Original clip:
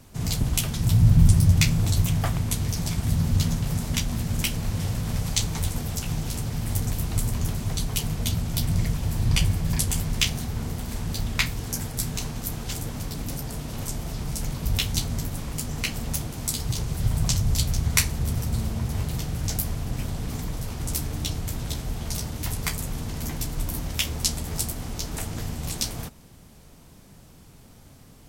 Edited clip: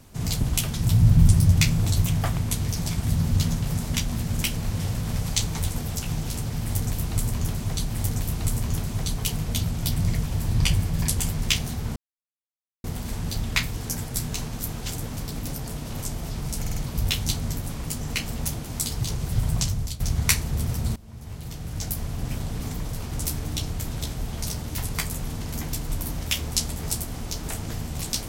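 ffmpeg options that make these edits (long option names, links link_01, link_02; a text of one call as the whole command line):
ffmpeg -i in.wav -filter_complex "[0:a]asplit=8[link_01][link_02][link_03][link_04][link_05][link_06][link_07][link_08];[link_01]atrim=end=7.892[link_09];[link_02]atrim=start=6.598:end=10.67,asetpts=PTS-STARTPTS,afade=type=out:start_time=4.068:duration=0.004:curve=hsin,apad=pad_dur=0.88[link_10];[link_03]atrim=start=10.67:end=14.492,asetpts=PTS-STARTPTS,afade=type=in:duration=0.004:curve=hsin[link_11];[link_04]atrim=start=14.438:end=14.492[link_12];[link_05]atrim=start=14.438:end=14.492[link_13];[link_06]atrim=start=14.438:end=17.68,asetpts=PTS-STARTPTS,afade=type=out:start_time=2.652:duration=0.59:curve=qsin:silence=0.158489[link_14];[link_07]atrim=start=17.68:end=18.64,asetpts=PTS-STARTPTS,afade=type=in:duration=0.004:curve=hsin:silence=0.158489,afade=type=out:start_time=0.956:duration=0.004:curve=hsin:silence=0.0707946[link_15];[link_08]atrim=start=18.64,asetpts=PTS-STARTPTS,afade=type=in:duration=1.29:silence=0.0707946[link_16];[link_10][link_11]concat=n=2:v=0:a=1[link_17];[link_09][link_17]acrossfade=duration=0.004:curve1=hsin:curve2=hsin[link_18];[link_18][link_12]acrossfade=duration=0.004:curve1=hsin:curve2=hsin[link_19];[link_19][link_13]acrossfade=duration=0.004:curve1=hsin:curve2=hsin[link_20];[link_14][link_15][link_16]concat=n=3:v=0:a=1[link_21];[link_20][link_21]acrossfade=duration=0.004:curve1=hsin:curve2=hsin" out.wav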